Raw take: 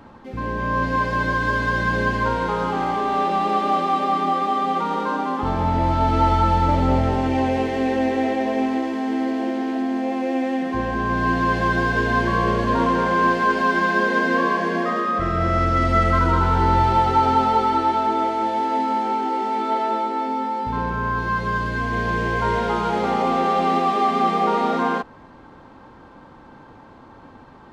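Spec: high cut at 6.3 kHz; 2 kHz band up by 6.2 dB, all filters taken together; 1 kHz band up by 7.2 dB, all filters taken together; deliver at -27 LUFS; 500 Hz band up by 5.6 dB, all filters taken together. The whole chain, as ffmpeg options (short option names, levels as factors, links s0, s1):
-af "lowpass=6300,equalizer=f=500:t=o:g=5,equalizer=f=1000:t=o:g=6,equalizer=f=2000:t=o:g=5.5,volume=0.251"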